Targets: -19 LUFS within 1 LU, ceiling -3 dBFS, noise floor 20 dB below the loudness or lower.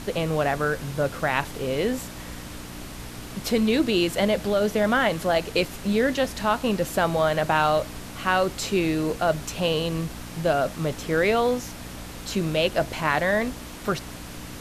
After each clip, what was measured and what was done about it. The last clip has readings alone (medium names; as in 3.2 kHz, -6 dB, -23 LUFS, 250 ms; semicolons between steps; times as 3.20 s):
hum 60 Hz; highest harmonic 300 Hz; hum level -39 dBFS; noise floor -38 dBFS; noise floor target -45 dBFS; loudness -24.5 LUFS; peak level -7.0 dBFS; loudness target -19.0 LUFS
-> de-hum 60 Hz, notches 5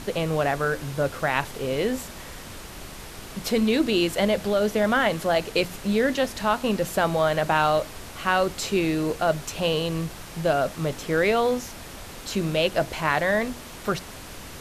hum not found; noise floor -40 dBFS; noise floor target -45 dBFS
-> noise print and reduce 6 dB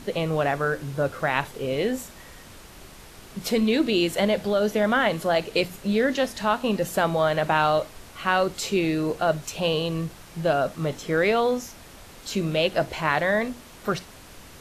noise floor -46 dBFS; loudness -24.5 LUFS; peak level -7.0 dBFS; loudness target -19.0 LUFS
-> trim +5.5 dB; peak limiter -3 dBFS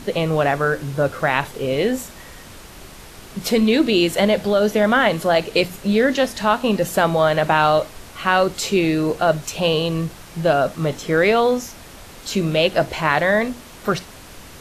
loudness -19.0 LUFS; peak level -3.0 dBFS; noise floor -41 dBFS